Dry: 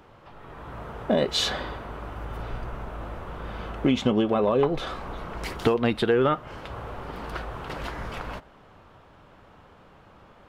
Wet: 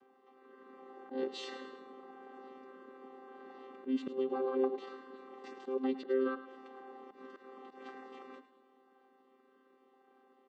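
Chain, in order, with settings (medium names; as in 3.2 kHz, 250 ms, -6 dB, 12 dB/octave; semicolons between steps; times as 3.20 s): vocoder on a held chord bare fifth, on C4; slow attack 115 ms; feedback delay 106 ms, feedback 46%, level -13 dB; trim -9 dB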